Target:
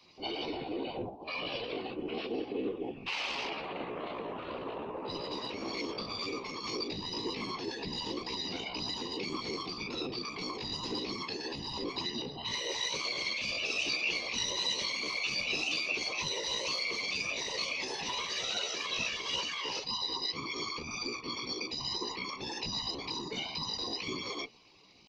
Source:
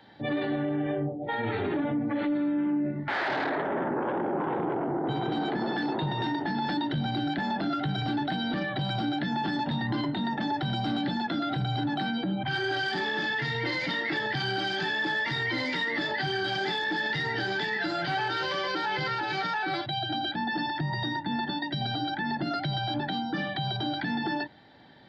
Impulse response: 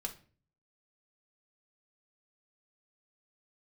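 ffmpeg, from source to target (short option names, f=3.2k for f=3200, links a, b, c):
-filter_complex "[0:a]flanger=delay=20:depth=3.8:speed=1.9,acrossover=split=140|360|1200[a][b][c][d];[a]acompressor=threshold=-55dB:ratio=10[e];[e][b][c][d]amix=inputs=4:normalize=0,afftfilt=real='hypot(re,im)*cos(2*PI*random(0))':imag='hypot(re,im)*sin(2*PI*random(1))':win_size=512:overlap=0.75,asetrate=55563,aresample=44100,atempo=0.793701,highshelf=f=2.3k:t=q:w=3:g=7"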